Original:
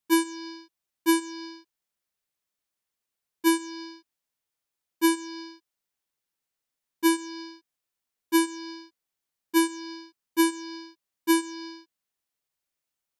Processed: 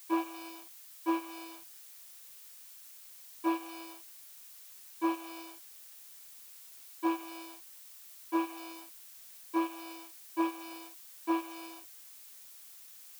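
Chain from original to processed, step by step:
variable-slope delta modulation 32 kbit/s
formant filter a
background noise blue −64 dBFS
level +11.5 dB

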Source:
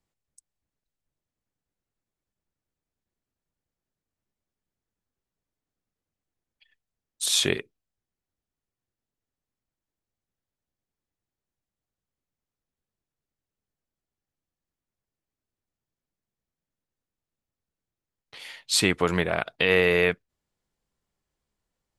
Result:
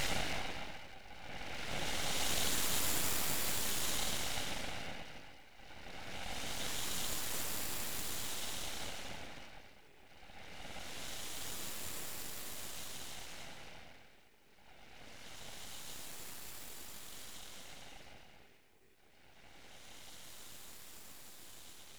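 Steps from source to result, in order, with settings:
feedback delay that plays each chunk backwards 484 ms, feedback 77%, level −7 dB
extreme stretch with random phases 4.6×, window 0.50 s, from 0:11.40
full-wave rectification
level +17 dB

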